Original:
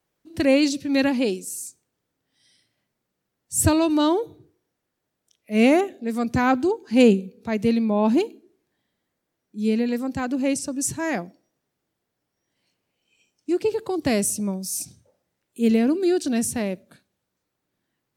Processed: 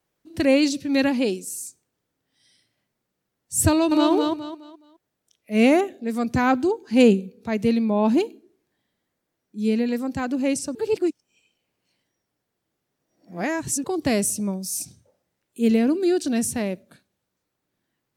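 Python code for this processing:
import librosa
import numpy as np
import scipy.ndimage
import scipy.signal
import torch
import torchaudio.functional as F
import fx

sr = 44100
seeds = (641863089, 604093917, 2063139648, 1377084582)

y = fx.echo_throw(x, sr, start_s=3.7, length_s=0.42, ms=210, feedback_pct=30, wet_db=-4.0)
y = fx.edit(y, sr, fx.reverse_span(start_s=10.75, length_s=3.09), tone=tone)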